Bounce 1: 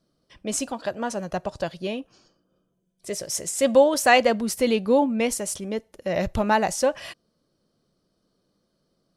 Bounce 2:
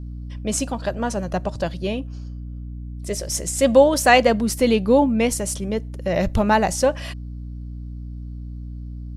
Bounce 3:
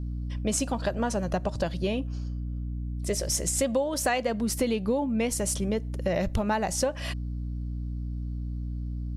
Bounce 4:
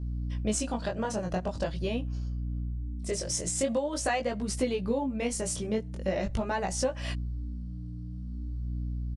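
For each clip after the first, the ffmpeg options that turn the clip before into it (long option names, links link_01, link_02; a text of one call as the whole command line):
ffmpeg -i in.wav -af "aeval=exprs='val(0)+0.0126*(sin(2*PI*60*n/s)+sin(2*PI*2*60*n/s)/2+sin(2*PI*3*60*n/s)/3+sin(2*PI*4*60*n/s)/4+sin(2*PI*5*60*n/s)/5)':channel_layout=same,lowshelf=frequency=200:gain=5.5,volume=2.5dB" out.wav
ffmpeg -i in.wav -af "acompressor=threshold=-23dB:ratio=8" out.wav
ffmpeg -i in.wav -af "flanger=delay=15.5:depth=7.6:speed=0.44,aresample=22050,aresample=44100" out.wav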